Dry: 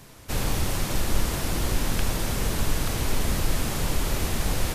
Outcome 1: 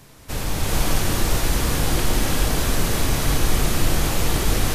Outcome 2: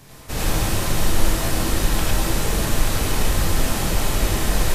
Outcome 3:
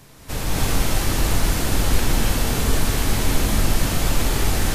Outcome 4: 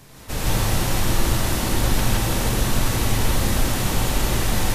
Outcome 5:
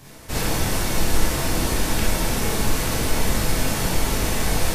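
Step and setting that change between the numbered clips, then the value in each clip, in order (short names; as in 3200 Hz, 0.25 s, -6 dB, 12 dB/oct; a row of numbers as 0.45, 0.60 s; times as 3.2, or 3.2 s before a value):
non-linear reverb, gate: 460, 130, 310, 190, 80 ms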